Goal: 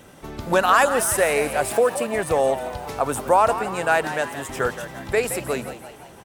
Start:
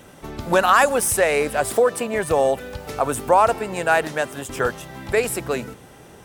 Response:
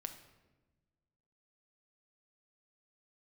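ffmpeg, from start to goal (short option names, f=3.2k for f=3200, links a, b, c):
-filter_complex "[0:a]asplit=7[a][b][c][d][e][f][g];[b]adelay=171,afreqshift=96,volume=-12dB[h];[c]adelay=342,afreqshift=192,volume=-17.4dB[i];[d]adelay=513,afreqshift=288,volume=-22.7dB[j];[e]adelay=684,afreqshift=384,volume=-28.1dB[k];[f]adelay=855,afreqshift=480,volume=-33.4dB[l];[g]adelay=1026,afreqshift=576,volume=-38.8dB[m];[a][h][i][j][k][l][m]amix=inputs=7:normalize=0,volume=-1.5dB"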